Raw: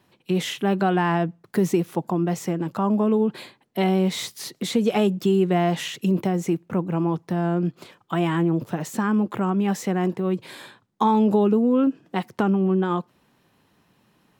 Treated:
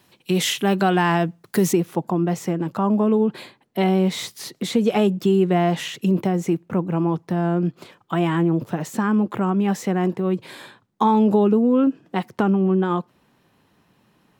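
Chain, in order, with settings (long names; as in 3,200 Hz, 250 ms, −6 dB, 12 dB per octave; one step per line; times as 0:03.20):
high-shelf EQ 2,900 Hz +9 dB, from 0:01.73 −2.5 dB
level +2 dB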